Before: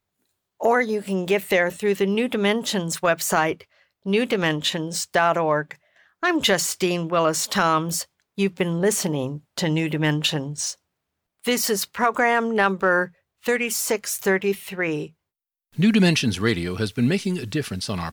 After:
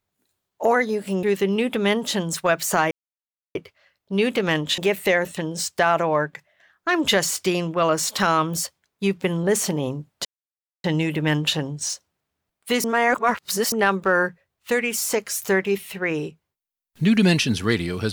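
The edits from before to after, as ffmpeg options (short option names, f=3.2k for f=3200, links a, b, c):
-filter_complex "[0:a]asplit=8[a][b][c][d][e][f][g][h];[a]atrim=end=1.232[i];[b]atrim=start=1.818:end=3.5,asetpts=PTS-STARTPTS,afade=t=out:st=1.678:d=0.004:c=hsin,apad=pad_dur=0.64[j];[c]atrim=start=3.5:end=4.732,asetpts=PTS-STARTPTS,afade=t=in:d=0.004:c=hsin[k];[d]atrim=start=1.228:end=1.822[l];[e]atrim=start=4.728:end=9.61,asetpts=PTS-STARTPTS,afade=t=out:st=4.878:d=0.004:c=hsin,apad=pad_dur=0.59[m];[f]atrim=start=9.61:end=11.612,asetpts=PTS-STARTPTS,afade=t=in:d=0.004:c=hsin[n];[g]atrim=start=11.608:end=12.492,asetpts=PTS-STARTPTS,areverse[o];[h]atrim=start=12.488[p];[j][k]concat=n=2:v=0:a=1[q];[i][q]acrossfade=d=0.004:c1=hsin:c2=hsin[r];[r][l]acrossfade=d=0.004:c1=hsin:c2=hsin[s];[m][n]concat=n=2:v=0:a=1[t];[s][t]acrossfade=d=0.004:c1=hsin:c2=hsin[u];[u][o]acrossfade=d=0.004:c1=hsin:c2=hsin[v];[v][p]acrossfade=d=0.004:c1=hsin:c2=hsin"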